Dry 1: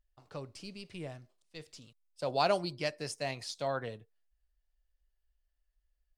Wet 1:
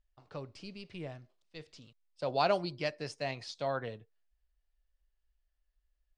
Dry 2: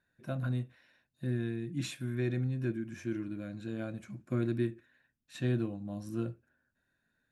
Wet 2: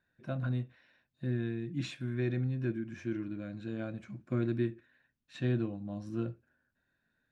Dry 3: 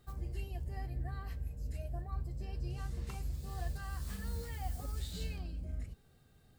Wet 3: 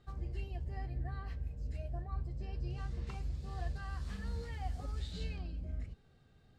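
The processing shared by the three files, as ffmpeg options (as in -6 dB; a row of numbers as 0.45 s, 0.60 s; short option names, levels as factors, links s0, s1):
-af "lowpass=4800"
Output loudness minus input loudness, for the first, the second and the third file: 0.0 LU, 0.0 LU, 0.0 LU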